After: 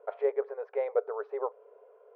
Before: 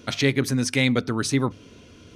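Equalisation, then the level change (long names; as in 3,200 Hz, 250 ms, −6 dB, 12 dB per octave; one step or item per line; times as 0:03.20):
linear-phase brick-wall high-pass 400 Hz
transistor ladder low-pass 1,000 Hz, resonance 25%
high-frequency loss of the air 77 metres
+5.0 dB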